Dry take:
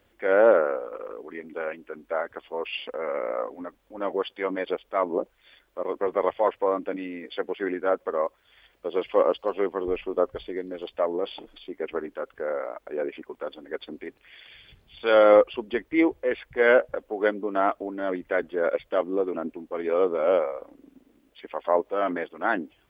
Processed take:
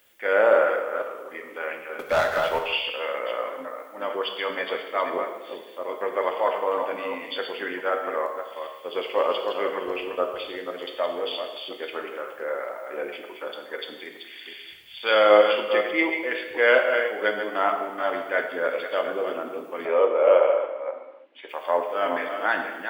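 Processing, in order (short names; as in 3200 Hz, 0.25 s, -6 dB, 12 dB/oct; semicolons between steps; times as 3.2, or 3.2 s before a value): reverse delay 0.255 s, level -7 dB; tilt +4 dB/oct; 1.99–2.59 sample leveller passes 3; 19.85–21.49 speaker cabinet 310–2900 Hz, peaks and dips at 360 Hz +4 dB, 570 Hz +8 dB, 930 Hz +6 dB; non-linear reverb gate 0.37 s falling, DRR 3.5 dB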